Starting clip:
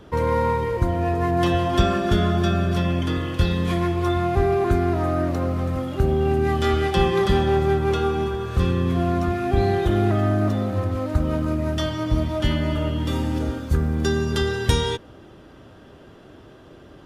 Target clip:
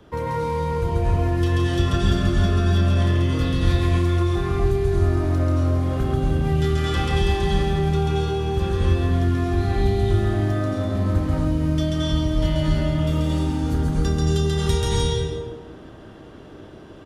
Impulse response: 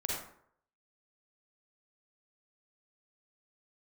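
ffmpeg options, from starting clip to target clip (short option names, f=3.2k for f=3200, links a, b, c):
-filter_complex "[0:a]aecho=1:1:32.07|169.1:0.251|0.282,asplit=2[a][b];[1:a]atrim=start_sample=2205,asetrate=22050,aresample=44100,adelay=136[c];[b][c]afir=irnorm=-1:irlink=0,volume=-3.5dB[d];[a][d]amix=inputs=2:normalize=0,acrossover=split=160|3000[e][f][g];[f]acompressor=threshold=-20dB:ratio=6[h];[e][h][g]amix=inputs=3:normalize=0,volume=-4dB"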